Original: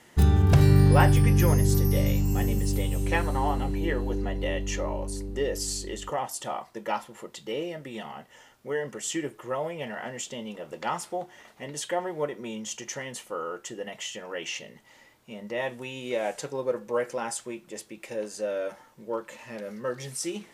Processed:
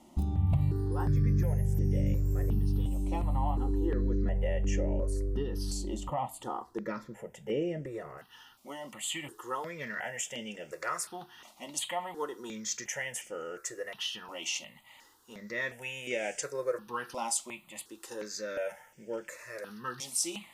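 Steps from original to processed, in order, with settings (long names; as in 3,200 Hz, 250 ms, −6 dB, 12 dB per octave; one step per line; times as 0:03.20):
tilt shelving filter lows +6 dB, about 860 Hz, from 0:08.17 lows −5 dB
downward compressor 5 to 1, threshold −24 dBFS, peak gain reduction 15.5 dB
step-sequenced phaser 2.8 Hz 450–4,000 Hz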